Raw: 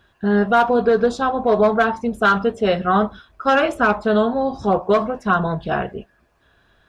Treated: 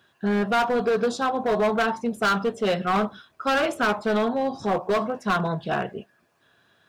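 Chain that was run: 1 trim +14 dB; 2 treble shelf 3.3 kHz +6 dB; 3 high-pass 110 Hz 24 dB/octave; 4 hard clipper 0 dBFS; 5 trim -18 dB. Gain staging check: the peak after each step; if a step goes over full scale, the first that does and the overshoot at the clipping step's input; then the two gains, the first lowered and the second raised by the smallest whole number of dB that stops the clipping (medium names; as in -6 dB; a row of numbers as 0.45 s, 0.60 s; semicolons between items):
+7.5 dBFS, +8.5 dBFS, +9.5 dBFS, 0.0 dBFS, -18.0 dBFS; step 1, 9.5 dB; step 1 +4 dB, step 5 -8 dB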